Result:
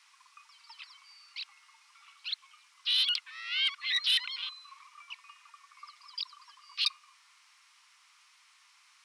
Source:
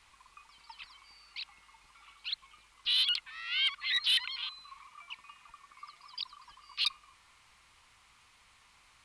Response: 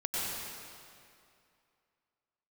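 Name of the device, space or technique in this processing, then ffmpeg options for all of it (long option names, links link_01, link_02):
headphones lying on a table: -af "highpass=frequency=1000:width=0.5412,highpass=frequency=1000:width=1.3066,equalizer=frequency=5500:width_type=o:width=0.4:gain=7"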